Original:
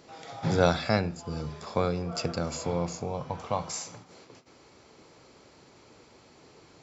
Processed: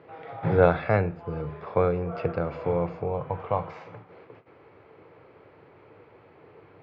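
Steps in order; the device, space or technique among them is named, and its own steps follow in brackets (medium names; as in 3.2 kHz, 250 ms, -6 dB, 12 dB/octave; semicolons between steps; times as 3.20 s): low-pass 6.1 kHz; bass cabinet (cabinet simulation 85–2400 Hz, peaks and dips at 99 Hz +6 dB, 230 Hz -9 dB, 460 Hz +5 dB); trim +2.5 dB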